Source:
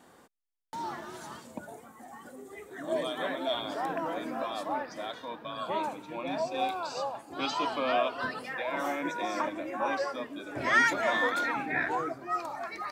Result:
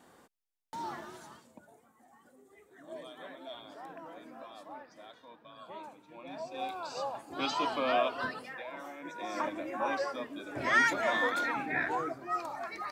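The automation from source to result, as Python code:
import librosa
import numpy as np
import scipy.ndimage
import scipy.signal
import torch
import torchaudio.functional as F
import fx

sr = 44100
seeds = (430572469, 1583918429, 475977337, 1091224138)

y = fx.gain(x, sr, db=fx.line((1.01, -2.5), (1.59, -14.0), (6.02, -14.0), (7.17, -1.0), (8.2, -1.0), (8.92, -14.0), (9.44, -2.0)))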